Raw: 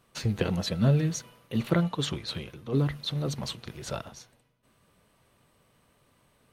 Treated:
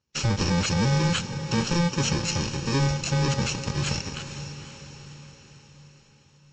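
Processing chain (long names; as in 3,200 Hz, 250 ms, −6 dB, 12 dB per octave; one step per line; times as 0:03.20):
samples in bit-reversed order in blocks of 64 samples
leveller curve on the samples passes 5
downward compressor, threshold −17 dBFS, peak gain reduction 3.5 dB
on a send: feedback delay with all-pass diffusion 485 ms, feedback 53%, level −10.5 dB
on the sum: level −3 dB
Ogg Vorbis 48 kbit/s 16,000 Hz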